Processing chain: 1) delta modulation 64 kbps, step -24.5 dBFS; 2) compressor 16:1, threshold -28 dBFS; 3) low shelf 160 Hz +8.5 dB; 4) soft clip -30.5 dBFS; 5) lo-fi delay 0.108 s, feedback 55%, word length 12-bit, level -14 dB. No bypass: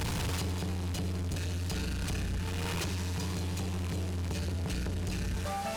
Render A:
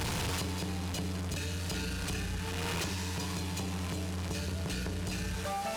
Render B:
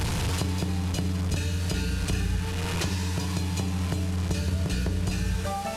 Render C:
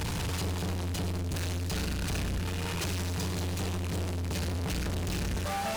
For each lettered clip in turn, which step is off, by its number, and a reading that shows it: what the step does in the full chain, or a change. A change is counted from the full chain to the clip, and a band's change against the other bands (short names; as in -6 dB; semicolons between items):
3, 125 Hz band -4.5 dB; 4, distortion -10 dB; 2, mean gain reduction 8.0 dB